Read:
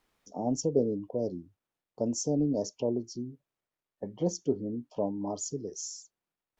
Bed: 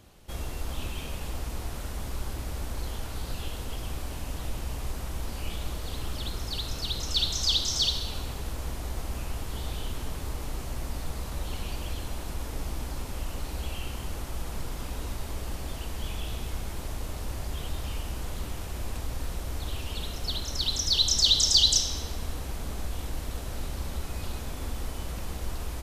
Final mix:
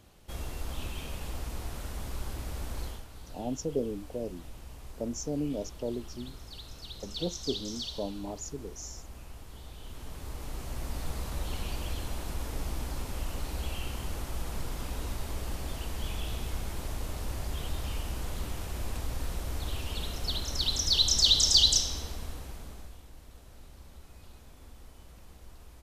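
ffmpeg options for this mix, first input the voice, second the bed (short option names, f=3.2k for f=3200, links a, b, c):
-filter_complex "[0:a]adelay=3000,volume=-4.5dB[a];[1:a]volume=8.5dB,afade=t=out:st=2.83:d=0.22:silence=0.334965,afade=t=in:st=9.77:d=1.33:silence=0.266073,afade=t=out:st=21.61:d=1.41:silence=0.158489[b];[a][b]amix=inputs=2:normalize=0"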